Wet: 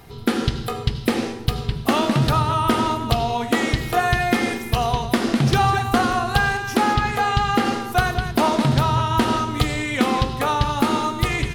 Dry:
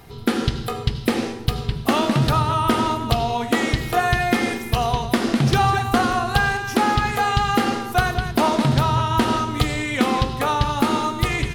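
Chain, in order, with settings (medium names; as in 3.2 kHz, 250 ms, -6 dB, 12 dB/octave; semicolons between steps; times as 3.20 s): 6.93–7.65 s: treble shelf 7.8 kHz -6.5 dB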